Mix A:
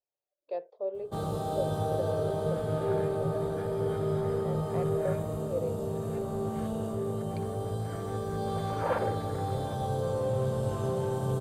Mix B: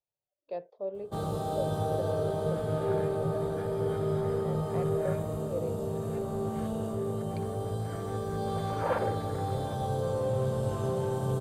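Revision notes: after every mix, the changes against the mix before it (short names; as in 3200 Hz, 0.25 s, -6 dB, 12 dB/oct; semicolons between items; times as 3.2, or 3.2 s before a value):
speech: add resonant low shelf 290 Hz +9.5 dB, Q 1.5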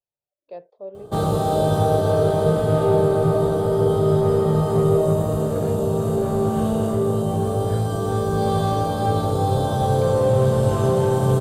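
first sound +12.0 dB; second sound: entry +2.65 s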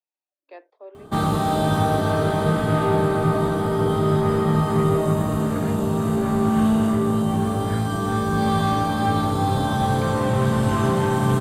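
speech: add Chebyshev high-pass 270 Hz, order 8; master: add graphic EQ 125/250/500/1000/2000 Hz -4/+9/-11/+4/+10 dB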